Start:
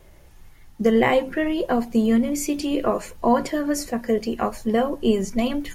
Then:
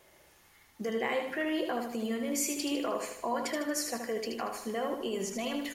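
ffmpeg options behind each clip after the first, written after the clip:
-af "alimiter=limit=-17dB:level=0:latency=1:release=118,highpass=f=670:p=1,aecho=1:1:77|154|231|308|385|462:0.501|0.236|0.111|0.052|0.0245|0.0115,volume=-2.5dB"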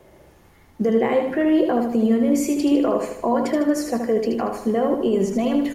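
-filter_complex "[0:a]tiltshelf=f=970:g=9,acrossover=split=100[a][b];[a]acrusher=bits=3:mode=log:mix=0:aa=0.000001[c];[c][b]amix=inputs=2:normalize=0,volume=8.5dB"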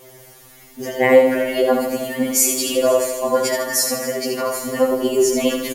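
-af "aecho=1:1:250|500|750|1000|1250|1500:0.168|0.0957|0.0545|0.0311|0.0177|0.0101,crystalizer=i=5:c=0,afftfilt=real='re*2.45*eq(mod(b,6),0)':imag='im*2.45*eq(mod(b,6),0)':win_size=2048:overlap=0.75,volume=4.5dB"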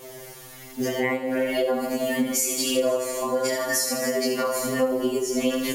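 -af "equalizer=f=13k:w=0.59:g=-2,acompressor=threshold=-25dB:ratio=6,flanger=delay=20:depth=4.2:speed=0.48,volume=6.5dB"

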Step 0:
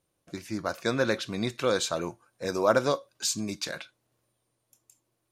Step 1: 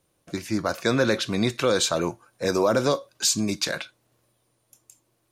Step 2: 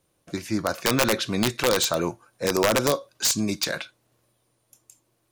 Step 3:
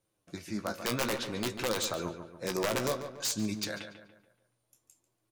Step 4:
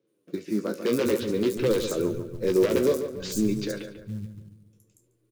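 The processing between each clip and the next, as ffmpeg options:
-filter_complex "[0:a]asplit=2[a][b];[b]alimiter=limit=-19dB:level=0:latency=1:release=12,volume=2.5dB[c];[a][c]amix=inputs=2:normalize=0,acrossover=split=470|3000[d][e][f];[e]acompressor=threshold=-22dB:ratio=6[g];[d][g][f]amix=inputs=3:normalize=0"
-af "aeval=exprs='(mod(4.22*val(0)+1,2)-1)/4.22':c=same"
-filter_complex "[0:a]flanger=delay=9:depth=7.7:regen=36:speed=0.56:shape=sinusoidal,asplit=2[a][b];[b]adelay=143,lowpass=f=2.8k:p=1,volume=-9dB,asplit=2[c][d];[d]adelay=143,lowpass=f=2.8k:p=1,volume=0.47,asplit=2[e][f];[f]adelay=143,lowpass=f=2.8k:p=1,volume=0.47,asplit=2[g][h];[h]adelay=143,lowpass=f=2.8k:p=1,volume=0.47,asplit=2[i][j];[j]adelay=143,lowpass=f=2.8k:p=1,volume=0.47[k];[c][e][g][i][k]amix=inputs=5:normalize=0[l];[a][l]amix=inputs=2:normalize=0,volume=-6dB"
-filter_complex "[0:a]lowshelf=f=570:t=q:w=3:g=8.5,acrossover=split=150|5600[a][b][c];[c]adelay=70[d];[a]adelay=710[e];[e][b][d]amix=inputs=3:normalize=0,acrusher=bits=7:mode=log:mix=0:aa=0.000001"

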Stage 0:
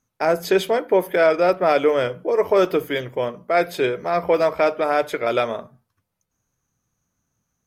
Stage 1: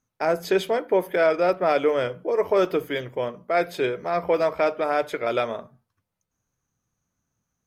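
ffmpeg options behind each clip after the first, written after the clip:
-af "highshelf=f=8.1k:g=-4,volume=-3.5dB"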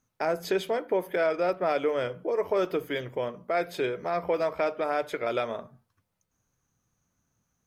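-af "acompressor=threshold=-40dB:ratio=1.5,volume=2.5dB"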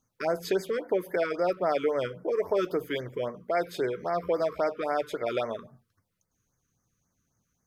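-af "afftfilt=real='re*(1-between(b*sr/1024,670*pow(3300/670,0.5+0.5*sin(2*PI*3.7*pts/sr))/1.41,670*pow(3300/670,0.5+0.5*sin(2*PI*3.7*pts/sr))*1.41))':imag='im*(1-between(b*sr/1024,670*pow(3300/670,0.5+0.5*sin(2*PI*3.7*pts/sr))/1.41,670*pow(3300/670,0.5+0.5*sin(2*PI*3.7*pts/sr))*1.41))':win_size=1024:overlap=0.75"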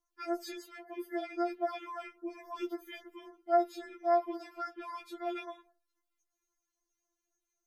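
-af "afftfilt=real='re*4*eq(mod(b,16),0)':imag='im*4*eq(mod(b,16),0)':win_size=2048:overlap=0.75,volume=-5.5dB"

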